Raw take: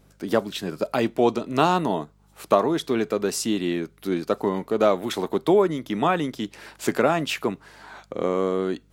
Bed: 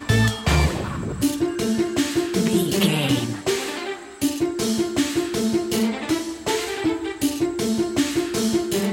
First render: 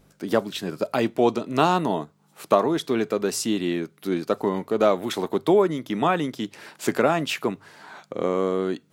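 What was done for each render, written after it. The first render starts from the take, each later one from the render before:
hum removal 50 Hz, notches 2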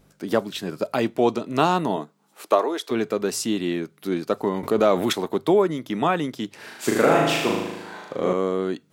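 0:01.96–0:02.90: high-pass filter 150 Hz → 440 Hz 24 dB per octave
0:04.63–0:05.13: envelope flattener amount 50%
0:06.56–0:08.33: flutter between parallel walls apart 6.5 metres, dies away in 1.1 s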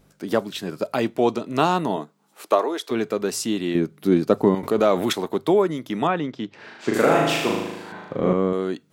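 0:03.75–0:04.55: low-shelf EQ 490 Hz +10.5 dB
0:06.07–0:06.94: high-frequency loss of the air 160 metres
0:07.92–0:08.53: bass and treble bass +10 dB, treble −12 dB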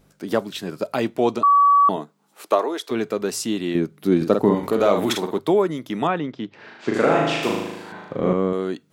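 0:01.43–0:01.89: beep over 1,140 Hz −11 dBFS
0:04.16–0:05.39: double-tracking delay 49 ms −5.5 dB
0:06.18–0:07.43: high-frequency loss of the air 77 metres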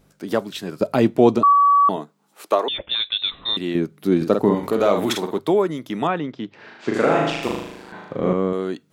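0:00.81–0:01.53: low-shelf EQ 490 Hz +10 dB
0:02.68–0:03.57: voice inversion scrambler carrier 3,900 Hz
0:07.30–0:07.93: amplitude modulation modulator 130 Hz, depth 55%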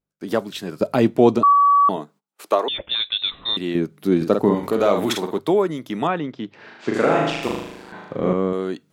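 noise gate −47 dBFS, range −29 dB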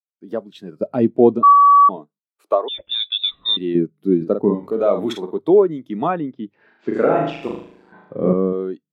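automatic gain control gain up to 7.5 dB
every bin expanded away from the loudest bin 1.5 to 1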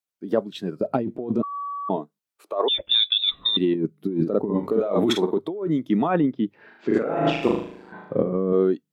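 compressor whose output falls as the input rises −23 dBFS, ratio −1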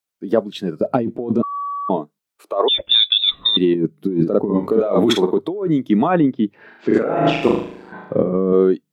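level +5.5 dB
brickwall limiter −3 dBFS, peak gain reduction 1 dB

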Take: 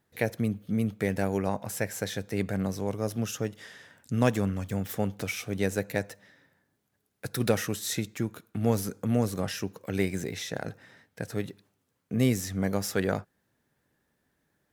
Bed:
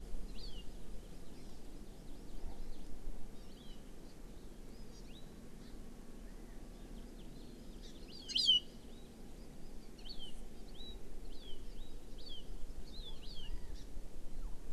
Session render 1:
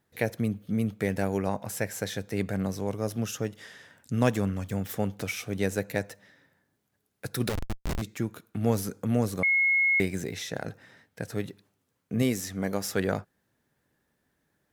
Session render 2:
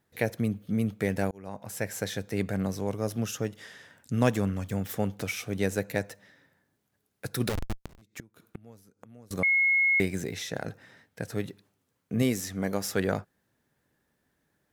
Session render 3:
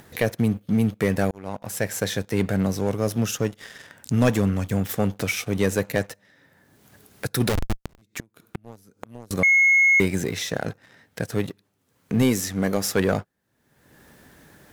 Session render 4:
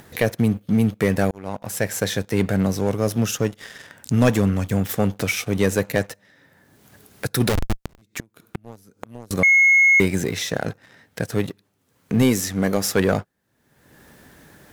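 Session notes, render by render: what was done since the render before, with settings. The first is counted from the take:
0:07.49–0:08.02: comparator with hysteresis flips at −24 dBFS; 0:09.43–0:10.00: beep over 2,170 Hz −20 dBFS; 0:12.22–0:12.85: parametric band 110 Hz −7 dB 1.2 octaves
0:01.31–0:01.93: fade in; 0:07.78–0:09.31: gate with flip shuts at −25 dBFS, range −26 dB
leveller curve on the samples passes 2; upward compression, threshold −29 dBFS
level +2.5 dB

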